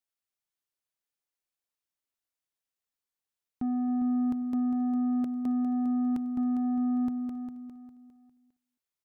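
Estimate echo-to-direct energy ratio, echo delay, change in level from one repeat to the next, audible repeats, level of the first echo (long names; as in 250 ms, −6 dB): −8.5 dB, 270 ms, repeats not evenly spaced, 5, −19.5 dB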